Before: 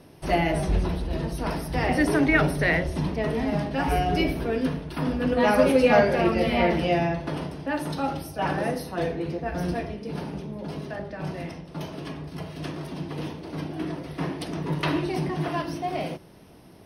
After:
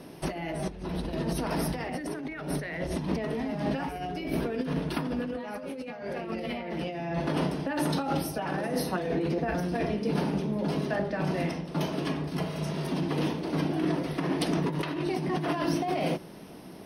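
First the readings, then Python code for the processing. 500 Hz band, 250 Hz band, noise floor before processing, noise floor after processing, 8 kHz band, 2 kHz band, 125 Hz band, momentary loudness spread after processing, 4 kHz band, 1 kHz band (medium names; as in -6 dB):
-6.0 dB, -3.0 dB, -49 dBFS, -44 dBFS, 0.0 dB, -8.5 dB, -3.0 dB, 6 LU, -3.5 dB, -6.0 dB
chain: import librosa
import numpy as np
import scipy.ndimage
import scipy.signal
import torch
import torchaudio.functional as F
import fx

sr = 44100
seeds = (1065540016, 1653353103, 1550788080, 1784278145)

y = fx.over_compress(x, sr, threshold_db=-31.0, ratio=-1.0)
y = fx.low_shelf_res(y, sr, hz=140.0, db=-6.5, q=1.5)
y = fx.spec_repair(y, sr, seeds[0], start_s=12.54, length_s=0.28, low_hz=250.0, high_hz=5200.0, source='both')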